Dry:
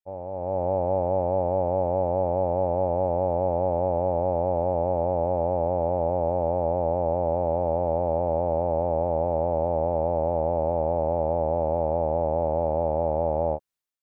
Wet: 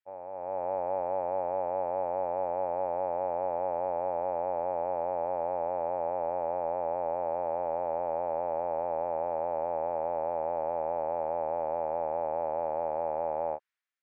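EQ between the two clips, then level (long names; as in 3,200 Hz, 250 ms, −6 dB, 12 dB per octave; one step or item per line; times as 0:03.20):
resonant band-pass 1,800 Hz, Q 1.9
+7.5 dB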